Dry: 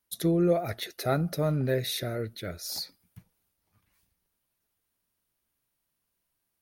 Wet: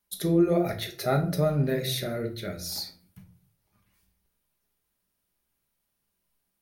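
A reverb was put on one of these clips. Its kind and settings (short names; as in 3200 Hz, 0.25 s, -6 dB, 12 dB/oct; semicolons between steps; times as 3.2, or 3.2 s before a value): shoebox room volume 370 m³, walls furnished, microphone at 1.3 m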